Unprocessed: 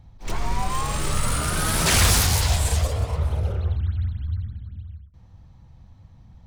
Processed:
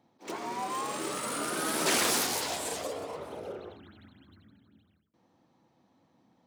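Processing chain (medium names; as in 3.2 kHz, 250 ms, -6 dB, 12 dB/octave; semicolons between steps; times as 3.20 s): Chebyshev high-pass 290 Hz, order 3; tilt shelf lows +5 dB, about 660 Hz; trim -3 dB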